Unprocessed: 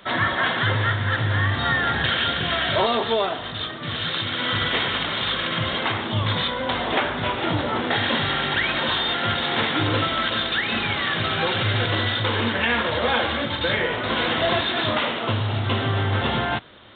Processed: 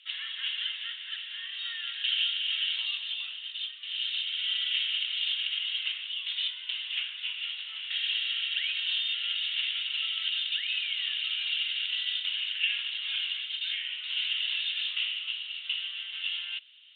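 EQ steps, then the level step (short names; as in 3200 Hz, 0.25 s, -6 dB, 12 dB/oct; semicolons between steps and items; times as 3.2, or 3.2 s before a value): ladder high-pass 2700 Hz, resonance 80%; air absorption 52 m; -1.0 dB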